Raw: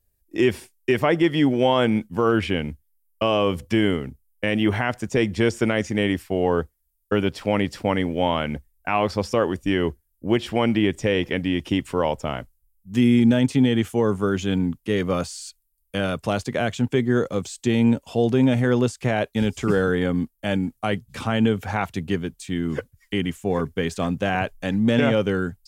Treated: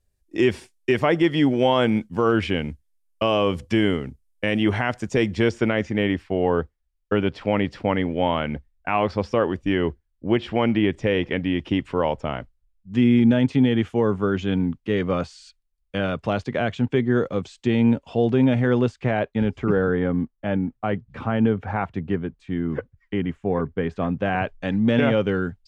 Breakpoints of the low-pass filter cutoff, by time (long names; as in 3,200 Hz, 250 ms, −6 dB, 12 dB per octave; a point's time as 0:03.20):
0:05.20 7,400 Hz
0:05.76 3,300 Hz
0:18.79 3,300 Hz
0:19.66 1,700 Hz
0:23.93 1,700 Hz
0:24.71 3,500 Hz